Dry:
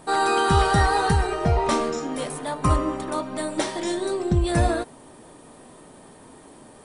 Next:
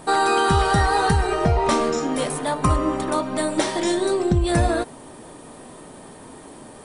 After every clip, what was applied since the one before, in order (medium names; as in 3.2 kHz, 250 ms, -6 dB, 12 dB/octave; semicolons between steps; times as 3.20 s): compression 2.5:1, threshold -22 dBFS, peak gain reduction 6 dB; trim +5.5 dB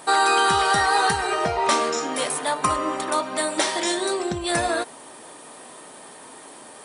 high-pass 980 Hz 6 dB/octave; trim +4 dB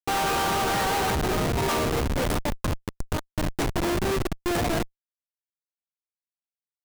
time-frequency box 2.49–3.76 s, 490–5500 Hz -8 dB; Schmitt trigger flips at -20.5 dBFS